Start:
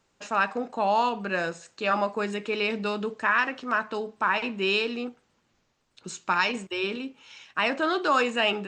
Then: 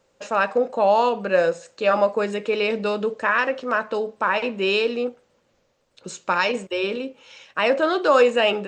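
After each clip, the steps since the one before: bell 530 Hz +14 dB 0.44 oct; gain +2 dB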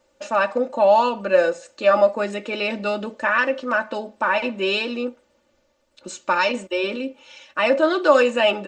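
comb 3.4 ms, depth 76%; gain -1 dB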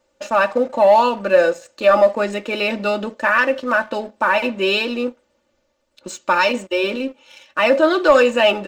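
sample leveller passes 1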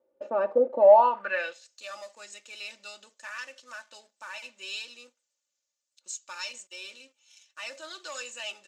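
band-pass sweep 440 Hz -> 6900 Hz, 0.8–1.8; gain -2 dB

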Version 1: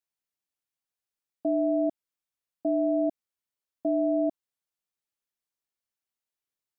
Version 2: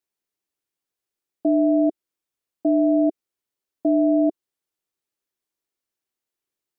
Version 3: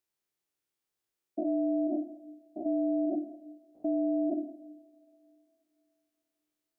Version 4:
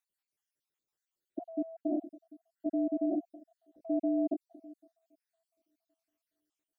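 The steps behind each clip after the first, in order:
bell 360 Hz +8.5 dB 0.76 oct; gain +3 dB
stepped spectrum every 0.1 s; two-slope reverb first 0.8 s, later 3.2 s, from -25 dB, DRR 8.5 dB; limiter -23 dBFS, peak gain reduction 11.5 dB
random spectral dropouts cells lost 62%

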